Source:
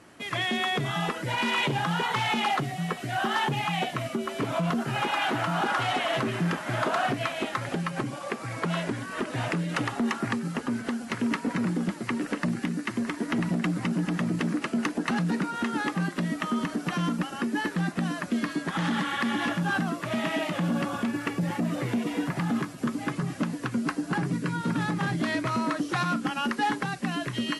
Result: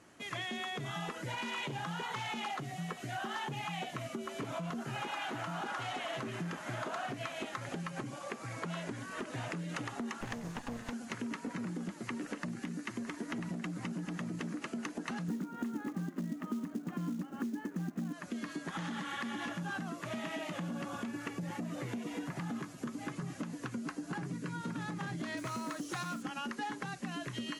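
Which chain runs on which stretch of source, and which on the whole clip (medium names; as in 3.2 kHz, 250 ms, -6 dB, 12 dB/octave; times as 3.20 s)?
10.21–10.93 s: comb filter that takes the minimum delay 1.1 ms + loudspeaker Doppler distortion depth 0.42 ms
15.28–18.13 s: low-pass 2 kHz + peaking EQ 240 Hz +13 dB 1.3 oct + companded quantiser 6-bit
25.37–26.23 s: treble shelf 6.2 kHz +10 dB + modulation noise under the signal 26 dB
whole clip: peaking EQ 6.6 kHz +6.5 dB 0.29 oct; compression, threshold -28 dBFS; trim -7.5 dB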